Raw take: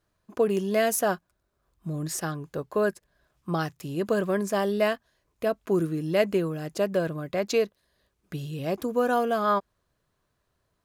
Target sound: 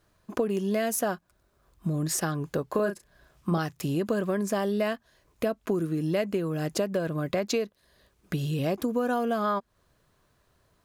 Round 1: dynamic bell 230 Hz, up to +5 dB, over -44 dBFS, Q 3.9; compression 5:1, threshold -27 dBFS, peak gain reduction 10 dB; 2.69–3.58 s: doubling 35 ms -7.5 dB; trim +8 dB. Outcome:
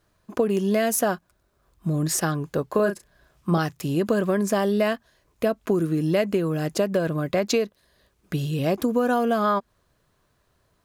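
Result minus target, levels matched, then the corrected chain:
compression: peak gain reduction -5 dB
dynamic bell 230 Hz, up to +5 dB, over -44 dBFS, Q 3.9; compression 5:1, threshold -33.5 dBFS, peak gain reduction 15 dB; 2.69–3.58 s: doubling 35 ms -7.5 dB; trim +8 dB

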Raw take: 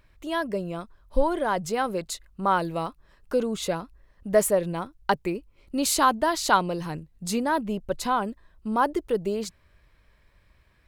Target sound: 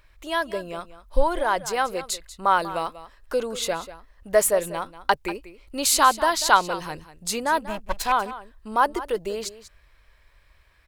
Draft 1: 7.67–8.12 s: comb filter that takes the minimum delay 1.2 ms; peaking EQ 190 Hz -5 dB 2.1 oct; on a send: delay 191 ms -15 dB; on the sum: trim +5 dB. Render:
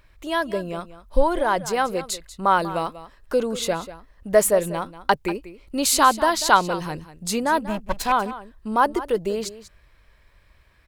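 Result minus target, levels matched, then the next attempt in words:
250 Hz band +5.0 dB
7.67–8.12 s: comb filter that takes the minimum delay 1.2 ms; peaking EQ 190 Hz -13.5 dB 2.1 oct; on a send: delay 191 ms -15 dB; on the sum: trim +5 dB

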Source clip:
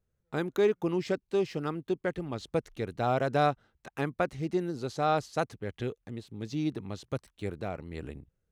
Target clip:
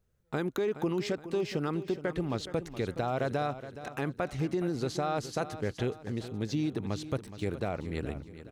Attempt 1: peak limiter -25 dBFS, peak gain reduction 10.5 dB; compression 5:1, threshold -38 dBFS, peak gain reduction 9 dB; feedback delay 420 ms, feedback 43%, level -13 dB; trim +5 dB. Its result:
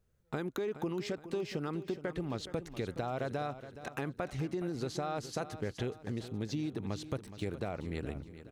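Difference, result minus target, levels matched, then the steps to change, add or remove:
compression: peak gain reduction +5.5 dB
change: compression 5:1, threshold -31 dBFS, peak gain reduction 3.5 dB

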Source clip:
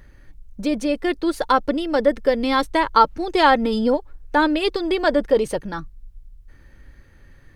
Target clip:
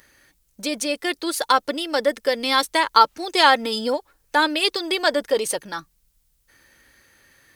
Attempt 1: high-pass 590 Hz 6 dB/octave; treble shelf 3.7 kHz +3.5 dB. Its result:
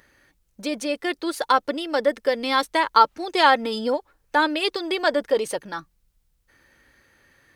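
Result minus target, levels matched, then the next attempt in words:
8 kHz band -7.0 dB
high-pass 590 Hz 6 dB/octave; treble shelf 3.7 kHz +14 dB

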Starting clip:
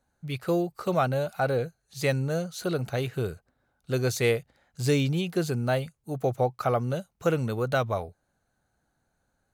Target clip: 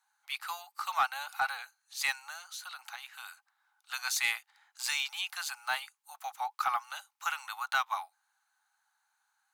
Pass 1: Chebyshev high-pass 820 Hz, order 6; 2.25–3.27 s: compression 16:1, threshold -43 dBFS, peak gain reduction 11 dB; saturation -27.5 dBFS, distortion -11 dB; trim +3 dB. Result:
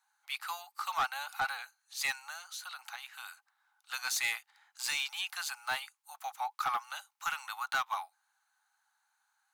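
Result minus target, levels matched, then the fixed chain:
saturation: distortion +9 dB
Chebyshev high-pass 820 Hz, order 6; 2.25–3.27 s: compression 16:1, threshold -43 dBFS, peak gain reduction 11 dB; saturation -20 dBFS, distortion -20 dB; trim +3 dB

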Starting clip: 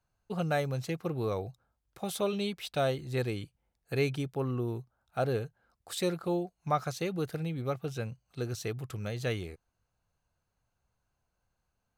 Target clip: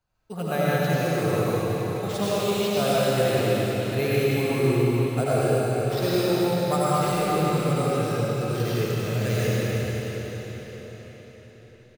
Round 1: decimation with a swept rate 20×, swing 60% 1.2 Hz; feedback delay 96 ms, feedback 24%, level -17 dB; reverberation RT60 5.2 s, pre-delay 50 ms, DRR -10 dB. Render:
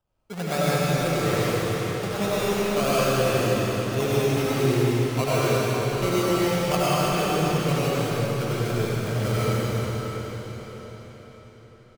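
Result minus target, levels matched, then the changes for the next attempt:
decimation with a swept rate: distortion +12 dB
change: decimation with a swept rate 4×, swing 60% 1.2 Hz

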